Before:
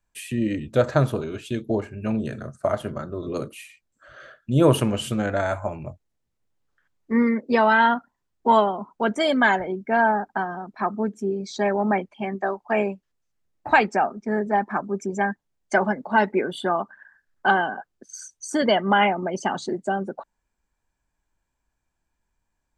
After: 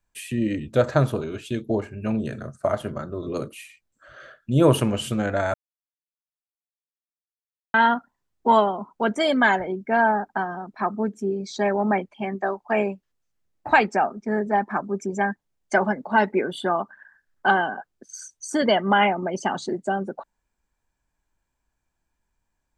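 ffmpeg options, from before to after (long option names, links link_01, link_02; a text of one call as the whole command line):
ffmpeg -i in.wav -filter_complex "[0:a]asplit=3[link_01][link_02][link_03];[link_01]atrim=end=5.54,asetpts=PTS-STARTPTS,afade=type=out:start_time=5.536:duration=0.004:curve=hsin[link_04];[link_02]atrim=start=5.54:end=7.74,asetpts=PTS-STARTPTS,volume=0[link_05];[link_03]atrim=start=7.74,asetpts=PTS-STARTPTS,afade=type=in:duration=0.004:curve=hsin[link_06];[link_04][link_05][link_06]concat=n=3:v=0:a=1" out.wav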